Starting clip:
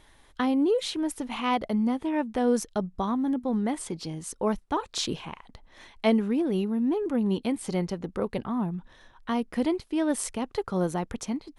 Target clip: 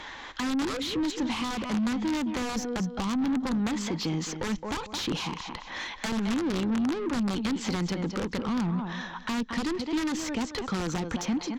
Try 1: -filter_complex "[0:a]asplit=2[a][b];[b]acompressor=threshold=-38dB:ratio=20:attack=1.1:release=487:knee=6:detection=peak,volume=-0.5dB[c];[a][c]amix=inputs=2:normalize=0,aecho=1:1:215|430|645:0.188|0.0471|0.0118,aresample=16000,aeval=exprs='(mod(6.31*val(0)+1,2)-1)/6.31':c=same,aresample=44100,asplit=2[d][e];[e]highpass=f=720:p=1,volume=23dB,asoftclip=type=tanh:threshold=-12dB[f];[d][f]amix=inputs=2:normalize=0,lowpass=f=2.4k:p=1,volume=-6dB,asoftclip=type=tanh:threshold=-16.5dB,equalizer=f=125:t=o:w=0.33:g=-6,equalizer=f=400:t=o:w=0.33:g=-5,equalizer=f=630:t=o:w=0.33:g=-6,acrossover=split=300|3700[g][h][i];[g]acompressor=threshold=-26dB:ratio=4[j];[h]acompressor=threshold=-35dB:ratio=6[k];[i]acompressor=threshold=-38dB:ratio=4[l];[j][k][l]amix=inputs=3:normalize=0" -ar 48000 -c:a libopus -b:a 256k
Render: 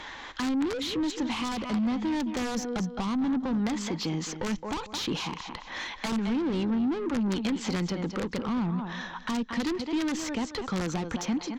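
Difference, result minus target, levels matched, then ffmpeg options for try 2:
compressor: peak gain reduction +11 dB
-filter_complex "[0:a]asplit=2[a][b];[b]acompressor=threshold=-26.5dB:ratio=20:attack=1.1:release=487:knee=6:detection=peak,volume=-0.5dB[c];[a][c]amix=inputs=2:normalize=0,aecho=1:1:215|430|645:0.188|0.0471|0.0118,aresample=16000,aeval=exprs='(mod(6.31*val(0)+1,2)-1)/6.31':c=same,aresample=44100,asplit=2[d][e];[e]highpass=f=720:p=1,volume=23dB,asoftclip=type=tanh:threshold=-12dB[f];[d][f]amix=inputs=2:normalize=0,lowpass=f=2.4k:p=1,volume=-6dB,asoftclip=type=tanh:threshold=-16.5dB,equalizer=f=125:t=o:w=0.33:g=-6,equalizer=f=400:t=o:w=0.33:g=-5,equalizer=f=630:t=o:w=0.33:g=-6,acrossover=split=300|3700[g][h][i];[g]acompressor=threshold=-26dB:ratio=4[j];[h]acompressor=threshold=-35dB:ratio=6[k];[i]acompressor=threshold=-38dB:ratio=4[l];[j][k][l]amix=inputs=3:normalize=0" -ar 48000 -c:a libopus -b:a 256k

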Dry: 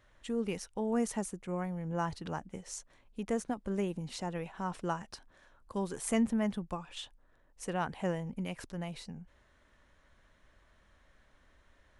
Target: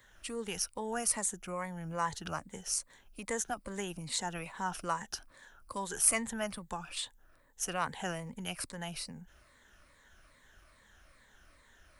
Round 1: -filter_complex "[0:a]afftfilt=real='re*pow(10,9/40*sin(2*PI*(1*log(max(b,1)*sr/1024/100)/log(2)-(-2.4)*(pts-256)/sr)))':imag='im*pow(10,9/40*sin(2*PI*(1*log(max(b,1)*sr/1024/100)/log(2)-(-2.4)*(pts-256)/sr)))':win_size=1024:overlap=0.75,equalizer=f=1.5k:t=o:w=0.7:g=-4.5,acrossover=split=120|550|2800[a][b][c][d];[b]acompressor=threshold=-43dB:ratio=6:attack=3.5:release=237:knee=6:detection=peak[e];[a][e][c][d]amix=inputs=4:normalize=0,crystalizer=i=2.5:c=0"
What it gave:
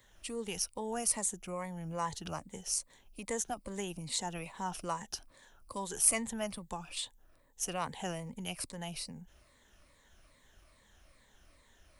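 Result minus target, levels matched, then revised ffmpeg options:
2000 Hz band -4.0 dB
-filter_complex "[0:a]afftfilt=real='re*pow(10,9/40*sin(2*PI*(1*log(max(b,1)*sr/1024/100)/log(2)-(-2.4)*(pts-256)/sr)))':imag='im*pow(10,9/40*sin(2*PI*(1*log(max(b,1)*sr/1024/100)/log(2)-(-2.4)*(pts-256)/sr)))':win_size=1024:overlap=0.75,equalizer=f=1.5k:t=o:w=0.7:g=4,acrossover=split=120|550|2800[a][b][c][d];[b]acompressor=threshold=-43dB:ratio=6:attack=3.5:release=237:knee=6:detection=peak[e];[a][e][c][d]amix=inputs=4:normalize=0,crystalizer=i=2.5:c=0"

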